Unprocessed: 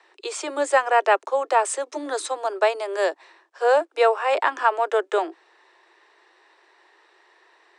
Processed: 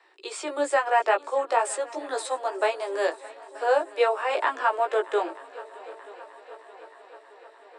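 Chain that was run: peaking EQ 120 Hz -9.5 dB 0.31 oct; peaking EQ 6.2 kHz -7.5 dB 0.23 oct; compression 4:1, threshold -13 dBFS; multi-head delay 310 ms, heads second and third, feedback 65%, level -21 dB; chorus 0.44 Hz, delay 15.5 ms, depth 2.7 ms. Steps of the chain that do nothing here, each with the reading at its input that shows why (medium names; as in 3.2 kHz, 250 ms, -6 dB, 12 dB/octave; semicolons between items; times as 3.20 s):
peaking EQ 120 Hz: input has nothing below 270 Hz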